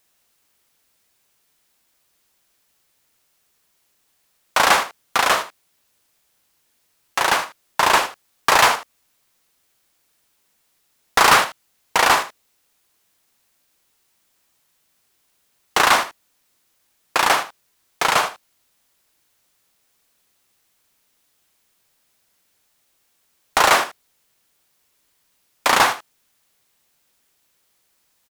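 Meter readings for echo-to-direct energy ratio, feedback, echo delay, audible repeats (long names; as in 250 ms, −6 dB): −13.0 dB, repeats not evenly spaced, 77 ms, 1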